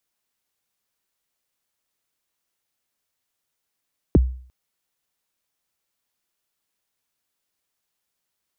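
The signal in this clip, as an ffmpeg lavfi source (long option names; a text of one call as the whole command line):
ffmpeg -f lavfi -i "aevalsrc='0.398*pow(10,-3*t/0.49)*sin(2*PI*(460*0.024/log(63/460)*(exp(log(63/460)*min(t,0.024)/0.024)-1)+63*max(t-0.024,0)))':duration=0.35:sample_rate=44100" out.wav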